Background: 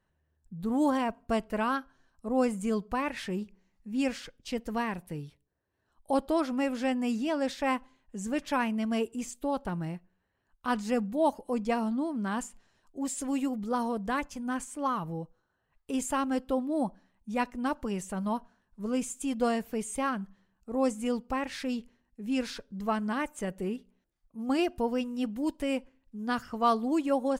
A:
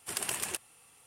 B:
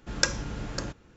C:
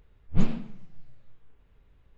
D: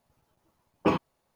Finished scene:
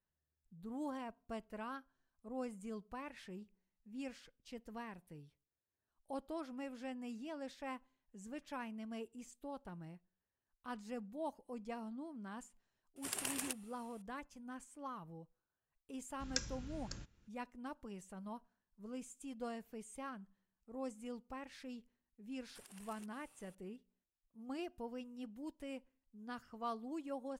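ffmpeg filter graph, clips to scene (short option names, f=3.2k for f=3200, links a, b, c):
-filter_complex "[1:a]asplit=2[a][b];[0:a]volume=-16.5dB[c];[2:a]equalizer=f=630:t=o:w=2.9:g=-12[d];[b]acompressor=threshold=-49dB:ratio=6:attack=3.2:release=140:knee=1:detection=peak[e];[a]atrim=end=1.06,asetpts=PTS-STARTPTS,volume=-7dB,afade=t=in:d=0.004:c=hsin,afade=t=out:st=1.056:d=0.004:c=hsin,adelay=12960[f];[d]atrim=end=1.16,asetpts=PTS-STARTPTS,volume=-11.5dB,afade=t=in:d=0.004:c=hsin,afade=t=out:st=1.156:d=0.004:c=hsin,adelay=16130[g];[e]atrim=end=1.06,asetpts=PTS-STARTPTS,volume=-8.5dB,afade=t=in:d=0.004:c=hsin,afade=t=out:st=1.056:d=0.004:c=hsin,adelay=22490[h];[c][f][g][h]amix=inputs=4:normalize=0"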